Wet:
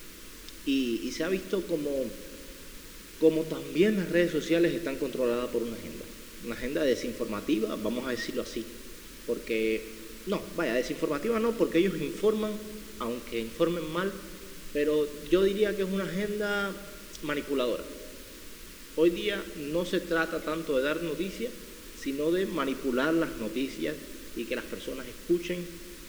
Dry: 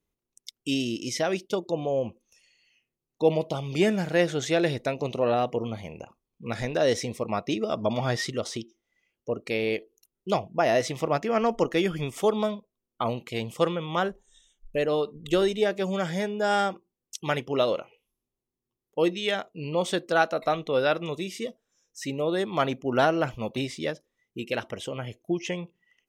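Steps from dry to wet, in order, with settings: low-pass 2 kHz 6 dB/octave; added noise pink -46 dBFS; static phaser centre 310 Hz, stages 4; simulated room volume 2200 m³, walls mixed, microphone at 0.59 m; trim +1.5 dB

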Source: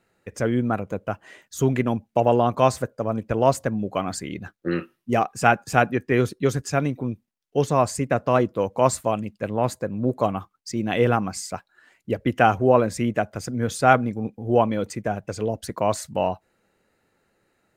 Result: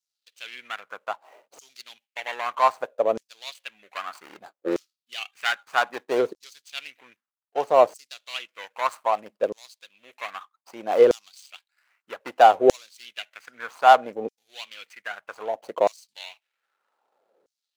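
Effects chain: median filter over 25 samples; LFO high-pass saw down 0.63 Hz 430–6100 Hz

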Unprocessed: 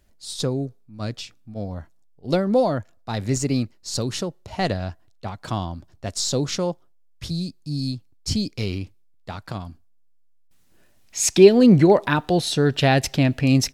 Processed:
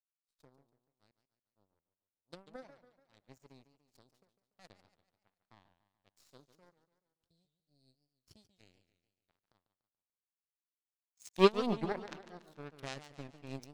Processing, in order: power-law waveshaper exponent 3; modulated delay 144 ms, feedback 49%, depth 197 cents, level -12 dB; trim -8 dB

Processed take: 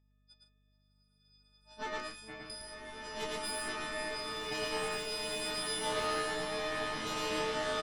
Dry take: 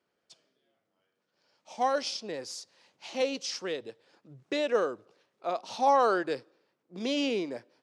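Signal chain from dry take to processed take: partials quantised in pitch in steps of 6 st; FFT band-pass 110–6100 Hz; 2.00–2.50 s: resonant high shelf 2.5 kHz -8 dB, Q 3; harmonic-percussive split harmonic -11 dB; Chebyshev shaper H 6 -11 dB, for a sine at -22.5 dBFS; loudspeakers at several distances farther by 38 m -2 dB, 51 m -10 dB; hum 50 Hz, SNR 28 dB; swelling reverb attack 2110 ms, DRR -5 dB; trim -6 dB

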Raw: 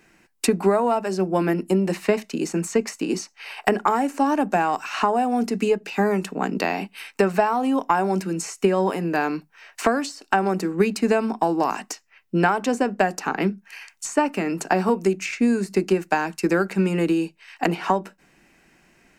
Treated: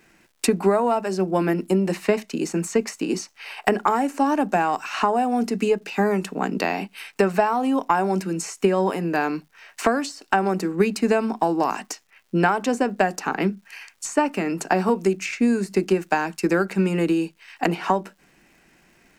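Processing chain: crackle 320 per s -51 dBFS

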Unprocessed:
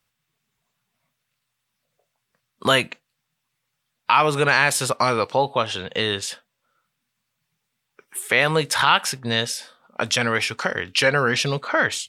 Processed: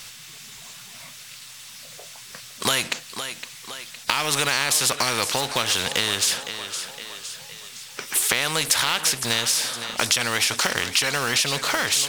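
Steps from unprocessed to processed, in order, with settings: companding laws mixed up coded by mu; peaking EQ 5.8 kHz +13.5 dB 2.8 oct; compression, threshold -17 dBFS, peak gain reduction 12 dB; on a send: thinning echo 512 ms, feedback 35%, high-pass 260 Hz, level -18.5 dB; on the sum: spectrum-flattening compressor 2:1

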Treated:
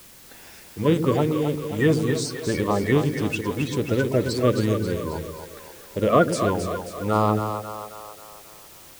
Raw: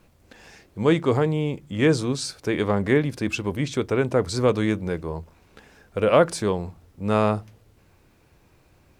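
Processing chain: coarse spectral quantiser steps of 30 dB; word length cut 8-bit, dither triangular; two-band feedback delay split 420 Hz, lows 112 ms, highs 268 ms, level -7 dB

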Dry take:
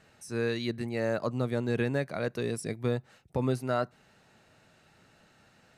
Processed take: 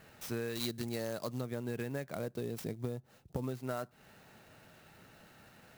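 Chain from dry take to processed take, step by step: 2.15–3.44 s: peaking EQ 2 kHz -9 dB 2.2 oct; compression 10:1, threshold -37 dBFS, peak gain reduction 14.5 dB; 0.55–1.41 s: resonant high shelf 3.7 kHz +13 dB, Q 1.5; sampling jitter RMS 0.03 ms; trim +3 dB

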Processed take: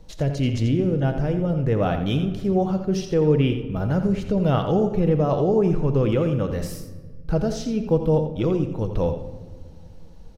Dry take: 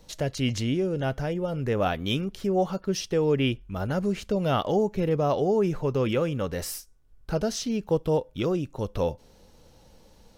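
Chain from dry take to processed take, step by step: tilt EQ -2 dB/octave; delay 85 ms -9.5 dB; simulated room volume 1500 m³, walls mixed, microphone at 0.61 m

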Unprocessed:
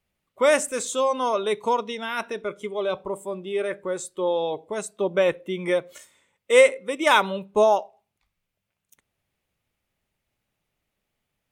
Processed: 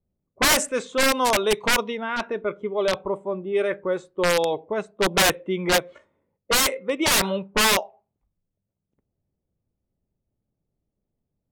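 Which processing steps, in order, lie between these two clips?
integer overflow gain 16.5 dB; level-controlled noise filter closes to 400 Hz, open at -19 dBFS; trim +3.5 dB

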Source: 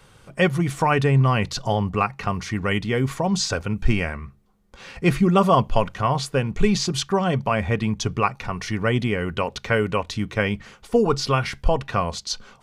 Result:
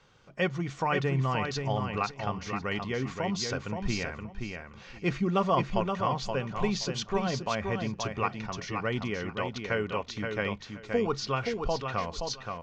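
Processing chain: steep low-pass 6.9 kHz 48 dB/octave; bass shelf 140 Hz -6 dB; on a send: feedback delay 524 ms, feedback 19%, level -5.5 dB; on the sum: trim -8.5 dB

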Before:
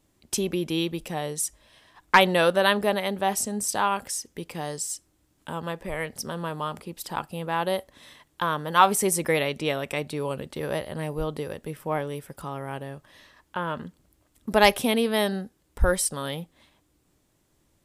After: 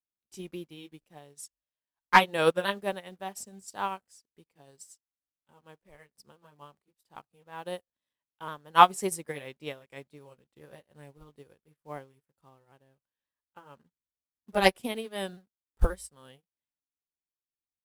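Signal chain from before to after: sawtooth pitch modulation -1.5 st, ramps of 530 ms; de-hum 53.94 Hz, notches 2; in parallel at -4 dB: bit crusher 7-bit; on the sum: upward expansion 2.5:1, over -38 dBFS

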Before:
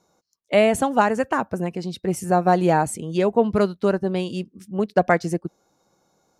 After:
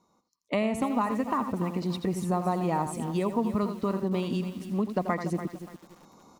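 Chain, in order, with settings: graphic EQ with 31 bands 1 kHz +12 dB, 1.6 kHz -7 dB, 2.5 kHz +4 dB, 4 kHz +4 dB; delay 84 ms -11 dB; level rider gain up to 15 dB; bass shelf 170 Hz +4.5 dB; small resonant body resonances 240/1200/1900 Hz, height 10 dB, ringing for 30 ms; compression 3:1, threshold -18 dBFS, peak gain reduction 10.5 dB; bit-crushed delay 289 ms, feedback 35%, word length 6-bit, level -11.5 dB; trim -8.5 dB

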